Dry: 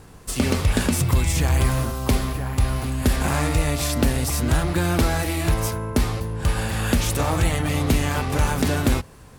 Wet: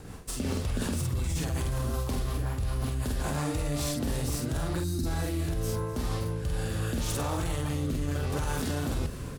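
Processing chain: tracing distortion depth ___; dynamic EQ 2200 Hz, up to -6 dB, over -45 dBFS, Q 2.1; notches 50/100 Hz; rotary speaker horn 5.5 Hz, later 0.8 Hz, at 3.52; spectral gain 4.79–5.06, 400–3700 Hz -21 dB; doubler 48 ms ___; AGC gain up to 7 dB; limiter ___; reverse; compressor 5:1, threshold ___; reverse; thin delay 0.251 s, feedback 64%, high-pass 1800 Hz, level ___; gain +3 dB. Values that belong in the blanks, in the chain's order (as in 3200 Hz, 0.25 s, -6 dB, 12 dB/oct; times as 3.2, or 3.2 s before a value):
0.031 ms, -2.5 dB, -10.5 dBFS, -32 dBFS, -16 dB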